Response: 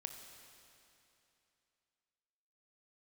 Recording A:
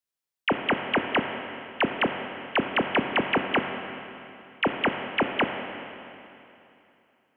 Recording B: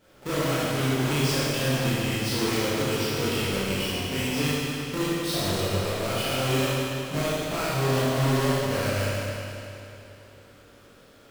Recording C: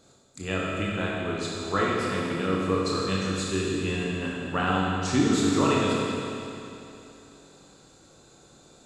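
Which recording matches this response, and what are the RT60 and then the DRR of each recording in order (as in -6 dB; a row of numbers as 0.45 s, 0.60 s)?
A; 2.9 s, 2.9 s, 2.9 s; 4.5 dB, -11.5 dB, -5.0 dB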